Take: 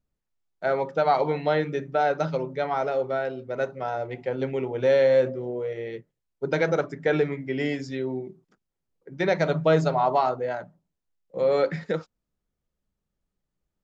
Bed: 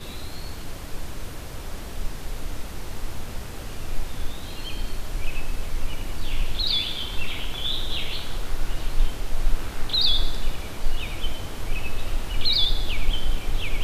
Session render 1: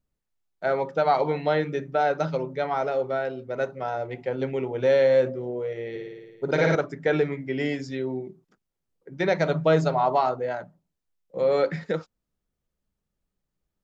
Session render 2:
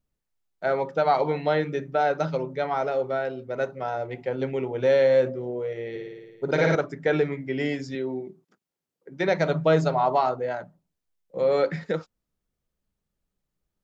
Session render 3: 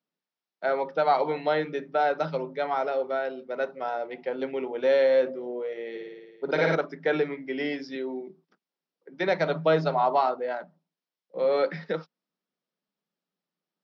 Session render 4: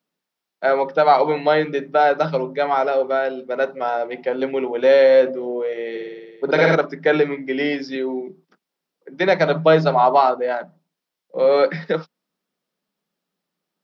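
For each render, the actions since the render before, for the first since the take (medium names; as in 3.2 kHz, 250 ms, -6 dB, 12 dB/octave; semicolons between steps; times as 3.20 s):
5.90–6.75 s: flutter echo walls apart 9.5 m, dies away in 1.4 s
7.95–9.28 s: high-pass 160 Hz
Chebyshev band-pass 160–5500 Hz, order 5; bass shelf 210 Hz -8 dB
trim +8.5 dB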